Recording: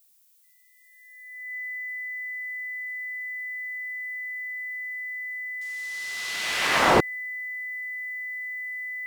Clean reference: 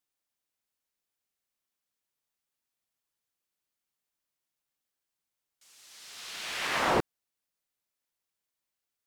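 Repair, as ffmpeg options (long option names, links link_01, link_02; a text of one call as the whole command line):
ffmpeg -i in.wav -af "bandreject=frequency=2000:width=30,agate=range=-21dB:threshold=-48dB,asetnsamples=nb_out_samples=441:pad=0,asendcmd='2.03 volume volume -7.5dB',volume=0dB" out.wav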